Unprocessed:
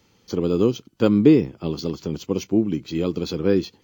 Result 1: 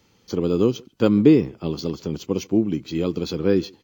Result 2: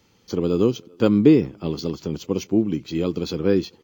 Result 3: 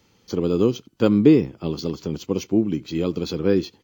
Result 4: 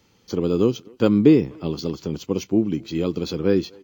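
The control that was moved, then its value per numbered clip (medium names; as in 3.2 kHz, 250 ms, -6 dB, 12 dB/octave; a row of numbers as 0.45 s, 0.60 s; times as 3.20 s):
speakerphone echo, time: 140 ms, 390 ms, 80 ms, 250 ms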